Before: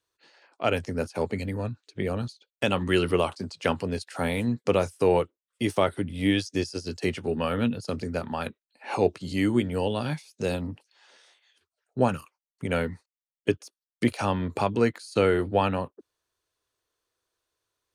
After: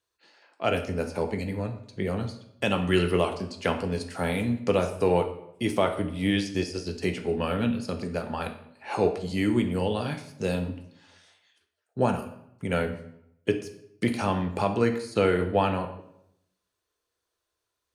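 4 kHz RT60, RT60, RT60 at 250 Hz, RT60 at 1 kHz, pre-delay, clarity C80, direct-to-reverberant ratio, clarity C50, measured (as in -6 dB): 0.55 s, 0.75 s, 0.85 s, 0.75 s, 3 ms, 13.0 dB, 5.0 dB, 10.0 dB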